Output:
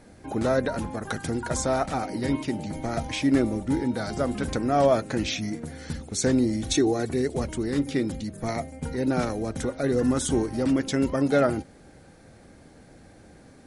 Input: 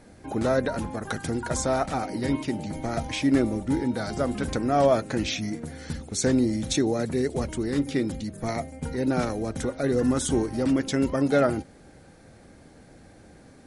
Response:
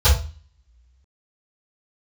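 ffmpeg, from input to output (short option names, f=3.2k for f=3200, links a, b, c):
-filter_complex "[0:a]asettb=1/sr,asplit=3[a][b][c];[a]atrim=end=6.614[d];[b]atrim=start=6.61:end=7.14,asetpts=PTS-STARTPTS,afade=t=in:d=0.004:c=qsin,afade=t=out:st=0.526:d=0.004:c=qsin,aecho=1:1:2.7:0.56,atrim=end_sample=23373[e];[c]atrim=start=7.136[f];[d][e]acrossfade=d=0.004:c1=hsin:c2=qsin[g];[g][f]acrossfade=d=0.004:c1=qsin:c2=hsin"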